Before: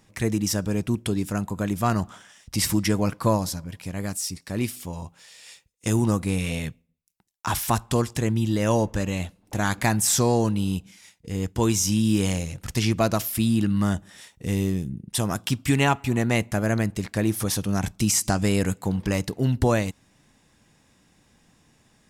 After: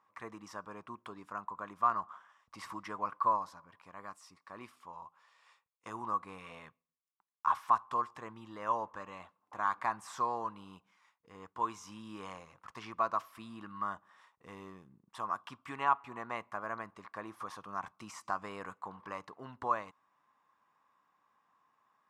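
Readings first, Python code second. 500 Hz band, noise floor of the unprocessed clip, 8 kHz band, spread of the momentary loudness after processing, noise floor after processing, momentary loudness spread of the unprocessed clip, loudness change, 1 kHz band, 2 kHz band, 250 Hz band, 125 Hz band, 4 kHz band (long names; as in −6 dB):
−17.5 dB, −62 dBFS, −30.5 dB, 20 LU, −83 dBFS, 10 LU, −12.5 dB, −2.5 dB, −13.0 dB, −26.0 dB, −32.0 dB, −23.5 dB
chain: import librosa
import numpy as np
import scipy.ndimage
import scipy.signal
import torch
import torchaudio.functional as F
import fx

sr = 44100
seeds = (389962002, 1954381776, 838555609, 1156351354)

y = fx.bandpass_q(x, sr, hz=1100.0, q=7.8)
y = y * librosa.db_to_amplitude(4.5)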